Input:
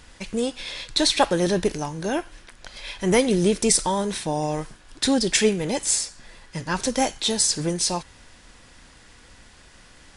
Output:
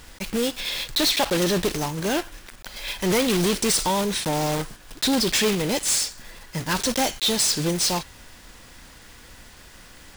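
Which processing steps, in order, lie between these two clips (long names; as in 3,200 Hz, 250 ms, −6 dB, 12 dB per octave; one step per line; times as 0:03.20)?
one scale factor per block 3 bits
dynamic equaliser 3,600 Hz, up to +5 dB, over −36 dBFS, Q 0.94
soft clipping −20 dBFS, distortion −9 dB
level +3 dB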